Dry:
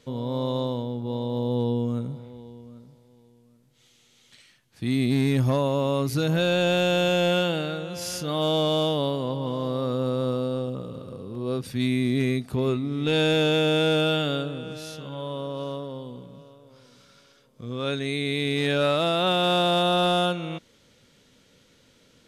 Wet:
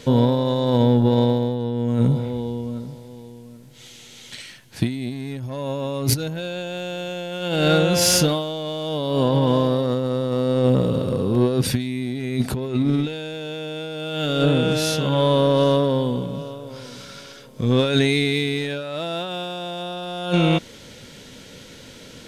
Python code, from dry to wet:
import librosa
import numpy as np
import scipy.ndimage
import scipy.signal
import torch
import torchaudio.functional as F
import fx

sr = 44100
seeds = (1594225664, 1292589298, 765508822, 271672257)

p1 = 10.0 ** (-33.5 / 20.0) * np.tanh(x / 10.0 ** (-33.5 / 20.0))
p2 = x + F.gain(torch.from_numpy(p1), -5.5).numpy()
p3 = fx.over_compress(p2, sr, threshold_db=-28.0, ratio=-0.5)
p4 = fx.notch(p3, sr, hz=1200.0, q=9.1)
y = F.gain(torch.from_numpy(p4), 8.0).numpy()